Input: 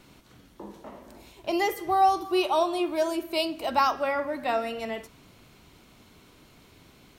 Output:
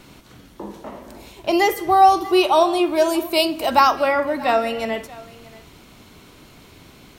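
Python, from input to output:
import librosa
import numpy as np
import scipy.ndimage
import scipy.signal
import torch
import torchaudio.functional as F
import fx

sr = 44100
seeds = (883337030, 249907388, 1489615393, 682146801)

y = fx.high_shelf(x, sr, hz=9400.0, db=7.5, at=(3.08, 3.8))
y = y + 10.0 ** (-21.0 / 20.0) * np.pad(y, (int(633 * sr / 1000.0), 0))[:len(y)]
y = y * 10.0 ** (8.5 / 20.0)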